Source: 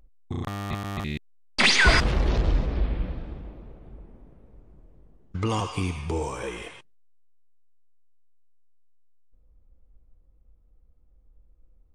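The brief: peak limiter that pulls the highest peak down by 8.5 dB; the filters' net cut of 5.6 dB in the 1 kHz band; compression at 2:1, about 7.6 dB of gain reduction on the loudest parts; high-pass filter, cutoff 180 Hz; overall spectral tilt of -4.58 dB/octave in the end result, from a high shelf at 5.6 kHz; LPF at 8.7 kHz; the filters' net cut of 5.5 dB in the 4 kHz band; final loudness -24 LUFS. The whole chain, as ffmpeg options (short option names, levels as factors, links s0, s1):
-af "highpass=180,lowpass=8700,equalizer=f=1000:t=o:g=-7,equalizer=f=4000:t=o:g=-8.5,highshelf=f=5600:g=5,acompressor=threshold=0.0224:ratio=2,volume=5.31,alimiter=limit=0.251:level=0:latency=1"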